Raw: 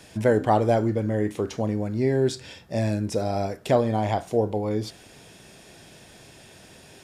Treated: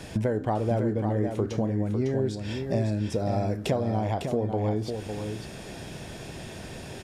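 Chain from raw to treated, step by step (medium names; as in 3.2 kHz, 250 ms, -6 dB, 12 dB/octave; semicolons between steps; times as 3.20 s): tilt EQ -1.5 dB/octave; compression 6:1, threshold -32 dBFS, peak gain reduction 17.5 dB; delay 553 ms -6.5 dB; trim +7 dB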